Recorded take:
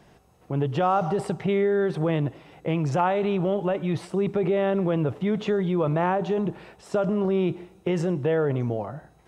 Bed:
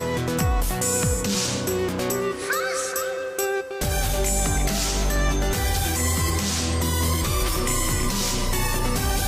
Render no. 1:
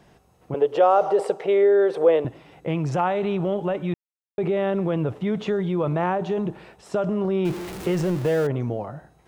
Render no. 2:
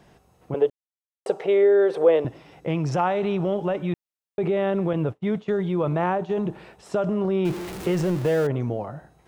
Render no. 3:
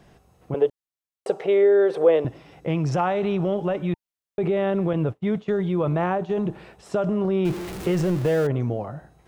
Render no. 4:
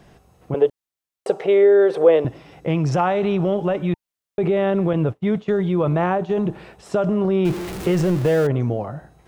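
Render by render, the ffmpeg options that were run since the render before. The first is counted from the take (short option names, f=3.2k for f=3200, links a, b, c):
-filter_complex "[0:a]asettb=1/sr,asplit=3[a][b][c];[a]atrim=end=0.544[d];[b]atrim=start=0.54:end=2.25,asetpts=PTS-STARTPTS,afade=t=in:d=0.004:c=qsin,afade=t=out:st=1.706:d=0.004:c=qsin,highpass=f=480:t=q:w=4.3[e];[c]atrim=start=2.246[f];[d][e]acrossfade=d=0.004:c1=hsin:c2=qsin[g];[g][f]acrossfade=d=0.004:c1=qsin:c2=hsin,asettb=1/sr,asplit=3[h][i][j];[h]atrim=end=7.454[k];[i]atrim=start=7.45:end=8.47,asetpts=PTS-STARTPTS,afade=t=in:d=0.004:c=qsin,afade=t=out:st=1.016:d=0.004:c=qsin,aeval=exprs='val(0)+0.5*0.0335*sgn(val(0))':c=same[l];[j]atrim=start=8.466[m];[k][l]acrossfade=d=0.004:c1=hsin:c2=qsin[n];[n][m]acrossfade=d=0.004:c1=qsin:c2=hsin,asplit=3[o][p][q];[o]atrim=end=3.94,asetpts=PTS-STARTPTS,afade=t=out:st=3.936:d=0.004:c=hsin[r];[p]atrim=start=3.94:end=4.38,asetpts=PTS-STARTPTS,volume=0[s];[q]atrim=start=4.38,asetpts=PTS-STARTPTS,afade=t=in:d=0.004:c=hsin[t];[r][s][t]concat=n=3:v=0:a=1"
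-filter_complex "[0:a]asettb=1/sr,asplit=3[a][b][c];[a]atrim=end=2.164[d];[b]atrim=start=2.16:end=3.81,asetpts=PTS-STARTPTS,afade=t=in:d=0.004:c=qsin,afade=t=out:st=1.646:d=0.004:c=qsin,equalizer=f=5.4k:t=o:w=0.27:g=6.5[e];[c]atrim=start=3.806[f];[d][e]acrossfade=d=0.004:c1=hsin:c2=qsin[g];[g][f]acrossfade=d=0.004:c1=qsin:c2=hsin,asettb=1/sr,asplit=3[h][i][j];[h]atrim=end=4.934[k];[i]atrim=start=4.93:end=6.31,asetpts=PTS-STARTPTS,afade=t=in:d=0.004:c=qsin,afade=t=out:st=1.376:d=0.004:c=qsin,agate=range=-33dB:threshold=-25dB:ratio=3:release=100:detection=peak[l];[j]atrim=start=6.306[m];[k][l]acrossfade=d=0.004:c1=hsin:c2=qsin[n];[n][m]acrossfade=d=0.004:c1=qsin:c2=hsin,asplit=3[o][p][q];[o]atrim=end=0.7,asetpts=PTS-STARTPTS,afade=t=out:st=0.696:d=0.004:c=hsin[r];[p]atrim=start=0.7:end=1.26,asetpts=PTS-STARTPTS,volume=0[s];[q]atrim=start=1.26,asetpts=PTS-STARTPTS,afade=t=in:d=0.004:c=hsin[t];[r][s][t]concat=n=3:v=0:a=1"
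-af "lowshelf=f=110:g=5,bandreject=f=910:w=27"
-af "volume=3.5dB"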